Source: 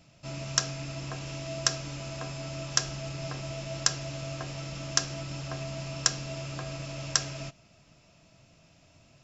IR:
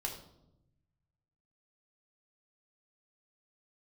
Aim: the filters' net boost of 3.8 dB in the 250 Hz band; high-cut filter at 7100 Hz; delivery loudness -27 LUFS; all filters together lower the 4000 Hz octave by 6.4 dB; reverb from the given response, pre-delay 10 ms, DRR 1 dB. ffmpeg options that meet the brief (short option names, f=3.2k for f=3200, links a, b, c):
-filter_complex "[0:a]lowpass=7.1k,equalizer=f=250:t=o:g=6,equalizer=f=4k:t=o:g=-9,asplit=2[a][b];[1:a]atrim=start_sample=2205,adelay=10[c];[b][c]afir=irnorm=-1:irlink=0,volume=-2dB[d];[a][d]amix=inputs=2:normalize=0,volume=7dB"